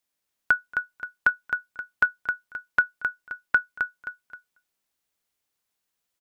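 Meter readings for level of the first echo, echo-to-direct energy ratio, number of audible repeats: -6.0 dB, -5.5 dB, 3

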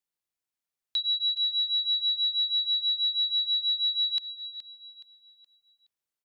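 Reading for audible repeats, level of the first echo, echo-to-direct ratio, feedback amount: 3, -12.5 dB, -12.0 dB, 37%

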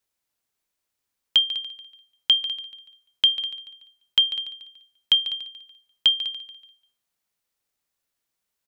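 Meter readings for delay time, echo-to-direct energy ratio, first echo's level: 144 ms, -13.0 dB, -14.0 dB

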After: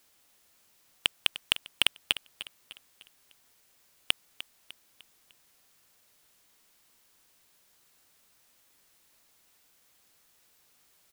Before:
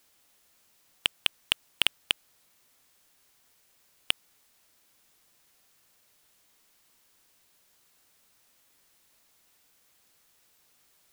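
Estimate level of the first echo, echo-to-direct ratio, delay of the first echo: -14.5 dB, -13.5 dB, 301 ms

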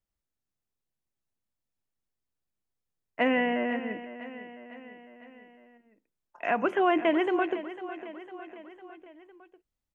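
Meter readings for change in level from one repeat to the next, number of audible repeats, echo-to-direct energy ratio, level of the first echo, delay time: -4.5 dB, 4, -12.0 dB, -13.5 dB, 503 ms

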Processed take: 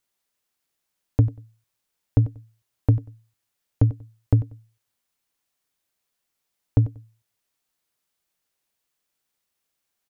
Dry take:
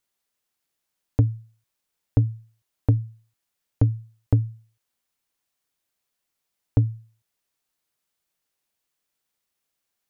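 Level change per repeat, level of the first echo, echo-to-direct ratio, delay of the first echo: -12.5 dB, -16.0 dB, -16.0 dB, 94 ms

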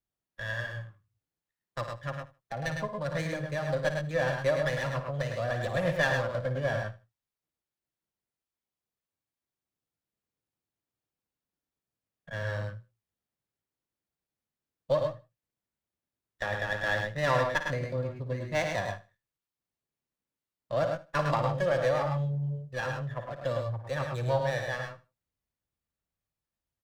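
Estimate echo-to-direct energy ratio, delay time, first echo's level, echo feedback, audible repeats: -3.0 dB, 55 ms, -10.5 dB, no regular repeats, 3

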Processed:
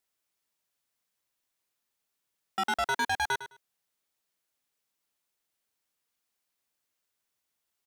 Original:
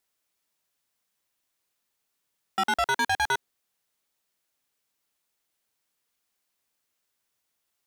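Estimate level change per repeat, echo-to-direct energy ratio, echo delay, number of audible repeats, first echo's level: -15.0 dB, -13.0 dB, 105 ms, 2, -13.0 dB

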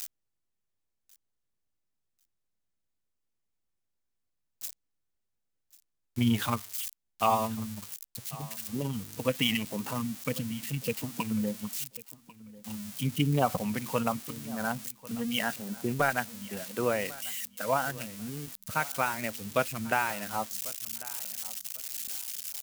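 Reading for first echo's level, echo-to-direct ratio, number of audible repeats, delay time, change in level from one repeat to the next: -20.0 dB, -20.0 dB, 2, 1094 ms, -13.0 dB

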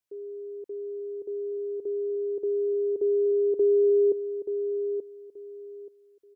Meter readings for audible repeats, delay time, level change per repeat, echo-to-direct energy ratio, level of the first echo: 3, 880 ms, -13.0 dB, -8.5 dB, -8.5 dB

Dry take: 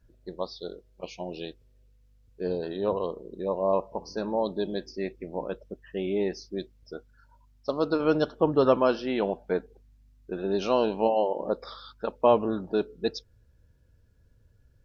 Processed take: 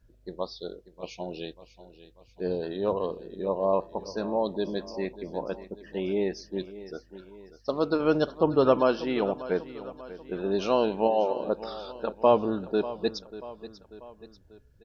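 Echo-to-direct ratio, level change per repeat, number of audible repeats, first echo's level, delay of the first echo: -14.5 dB, -6.0 dB, 3, -15.5 dB, 590 ms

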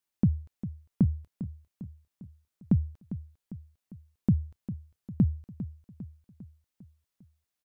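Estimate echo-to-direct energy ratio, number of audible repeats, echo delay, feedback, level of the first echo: -11.5 dB, 4, 401 ms, 53%, -13.0 dB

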